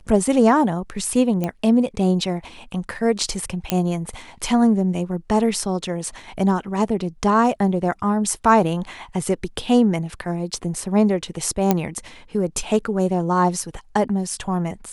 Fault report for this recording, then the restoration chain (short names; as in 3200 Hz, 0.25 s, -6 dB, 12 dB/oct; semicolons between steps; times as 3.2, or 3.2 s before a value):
1.44 pop -11 dBFS
3.7 pop -3 dBFS
11.71 pop -3 dBFS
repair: de-click